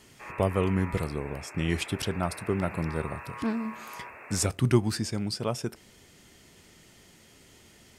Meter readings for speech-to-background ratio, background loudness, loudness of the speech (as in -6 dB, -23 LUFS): 12.5 dB, -42.5 LUFS, -30.0 LUFS